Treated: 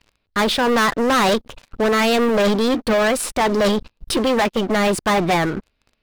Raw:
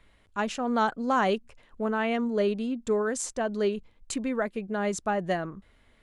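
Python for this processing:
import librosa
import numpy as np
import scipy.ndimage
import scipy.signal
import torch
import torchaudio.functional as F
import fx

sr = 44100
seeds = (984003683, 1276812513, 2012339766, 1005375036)

y = fx.formant_shift(x, sr, semitones=4)
y = fx.high_shelf_res(y, sr, hz=5700.0, db=-8.5, q=1.5)
y = fx.leveller(y, sr, passes=5)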